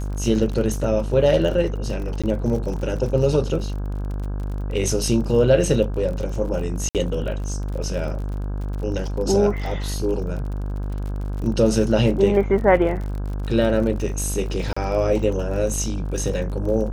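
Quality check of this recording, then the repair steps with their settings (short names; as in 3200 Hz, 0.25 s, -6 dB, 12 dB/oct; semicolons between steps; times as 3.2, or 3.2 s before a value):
buzz 50 Hz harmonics 33 -26 dBFS
crackle 40/s -30 dBFS
2.22–2.24 gap 16 ms
6.89–6.95 gap 58 ms
14.73–14.77 gap 35 ms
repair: de-click; de-hum 50 Hz, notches 33; interpolate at 2.22, 16 ms; interpolate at 6.89, 58 ms; interpolate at 14.73, 35 ms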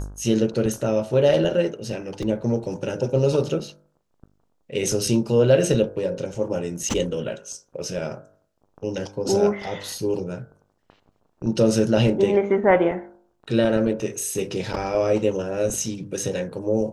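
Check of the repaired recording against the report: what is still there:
none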